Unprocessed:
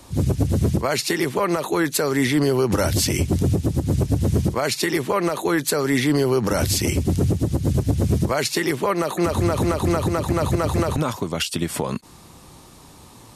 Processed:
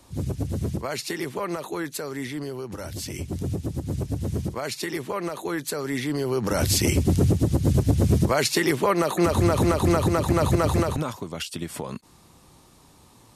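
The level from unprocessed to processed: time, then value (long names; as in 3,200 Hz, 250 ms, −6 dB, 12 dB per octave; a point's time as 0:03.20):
0:01.57 −8 dB
0:02.76 −15.5 dB
0:03.56 −8 dB
0:06.16 −8 dB
0:06.77 0 dB
0:10.72 0 dB
0:11.18 −8 dB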